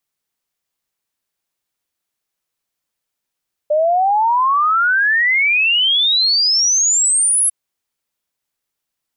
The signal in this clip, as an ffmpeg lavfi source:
-f lavfi -i "aevalsrc='0.266*clip(min(t,3.8-t)/0.01,0,1)*sin(2*PI*590*3.8/log(11000/590)*(exp(log(11000/590)*t/3.8)-1))':d=3.8:s=44100"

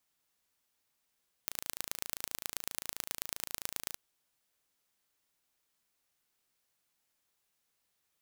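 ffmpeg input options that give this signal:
-f lavfi -i "aevalsrc='0.473*eq(mod(n,1598),0)*(0.5+0.5*eq(mod(n,4794),0))':d=2.49:s=44100"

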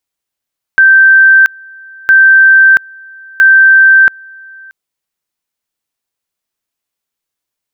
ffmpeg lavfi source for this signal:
-f lavfi -i "aevalsrc='pow(10,(-1.5-28.5*gte(mod(t,1.31),0.68))/20)*sin(2*PI*1560*t)':d=3.93:s=44100"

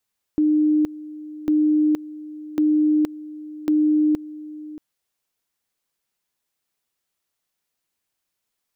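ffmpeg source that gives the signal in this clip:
-f lavfi -i "aevalsrc='pow(10,(-14.5-18*gte(mod(t,1.1),0.47))/20)*sin(2*PI*304*t)':d=4.4:s=44100"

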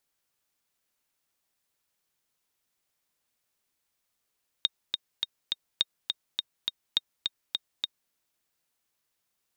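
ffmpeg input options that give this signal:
-f lavfi -i "aevalsrc='pow(10,(-10-4.5*gte(mod(t,4*60/207),60/207))/20)*sin(2*PI*3710*mod(t,60/207))*exp(-6.91*mod(t,60/207)/0.03)':d=3.47:s=44100"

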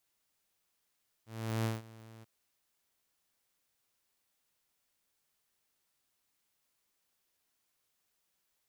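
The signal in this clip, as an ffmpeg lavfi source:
-f lavfi -i "aevalsrc='0.0447*(2*mod(112*t,1)-1)':d=0.991:s=44100,afade=t=in:d=0.388,afade=t=out:st=0.388:d=0.168:silence=0.0841,afade=t=out:st=0.97:d=0.021"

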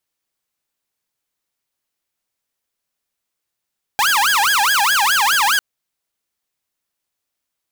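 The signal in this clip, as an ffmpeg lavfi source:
-f lavfi -i "aevalsrc='0.299*(2*mod((1233*t-437/(2*PI*4.8)*sin(2*PI*4.8*t)),1)-1)':d=1.6:s=44100"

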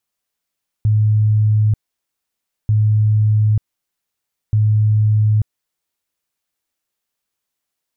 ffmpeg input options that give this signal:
-f lavfi -i "aevalsrc='0.299*sin(2*PI*107*mod(t,1.84))*lt(mod(t,1.84),95/107)':d=5.52:s=44100"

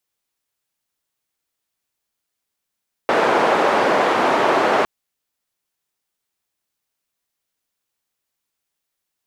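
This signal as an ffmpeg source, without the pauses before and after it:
-f lavfi -i "anoisesrc=c=white:d=1.76:r=44100:seed=1,highpass=f=380,lowpass=f=890,volume=4dB"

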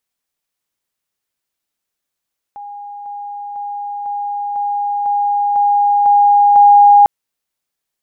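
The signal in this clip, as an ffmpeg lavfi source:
-f lavfi -i "aevalsrc='pow(10,(-27.5+3*floor(t/0.5))/20)*sin(2*PI*817*t)':d=4.5:s=44100"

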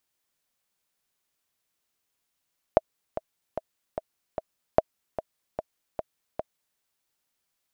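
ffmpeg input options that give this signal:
-f lavfi -i "aevalsrc='pow(10,(-3.5-13*gte(mod(t,5*60/149),60/149))/20)*sin(2*PI*638*mod(t,60/149))*exp(-6.91*mod(t,60/149)/0.03)':d=4.02:s=44100"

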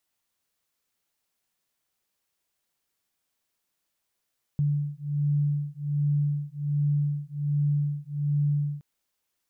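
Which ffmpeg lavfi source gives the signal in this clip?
-f lavfi -i "aevalsrc='0.0473*(sin(2*PI*145*t)+sin(2*PI*146.3*t))':d=4.22:s=44100"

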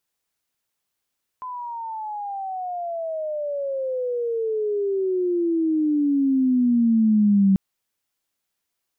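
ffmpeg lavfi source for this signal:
-f lavfi -i "aevalsrc='pow(10,(-13+16.5*(t/6.14-1))/20)*sin(2*PI*1020*6.14/(-29*log(2)/12)*(exp(-29*log(2)/12*t/6.14)-1))':d=6.14:s=44100"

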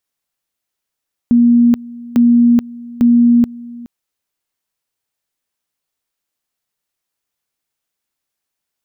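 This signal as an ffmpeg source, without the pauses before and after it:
-f lavfi -i "aevalsrc='pow(10,(-6-21.5*gte(mod(t,0.85),0.43))/20)*sin(2*PI*238*t)':d=2.55:s=44100"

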